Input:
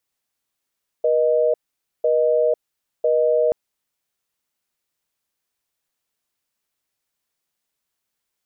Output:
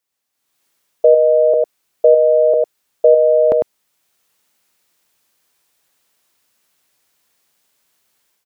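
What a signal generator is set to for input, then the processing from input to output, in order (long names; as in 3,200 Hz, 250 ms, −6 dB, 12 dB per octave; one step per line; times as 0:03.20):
call progress tone busy tone, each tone −17.5 dBFS 2.48 s
low-shelf EQ 97 Hz −9 dB
automatic gain control gain up to 14 dB
single-tap delay 101 ms −6 dB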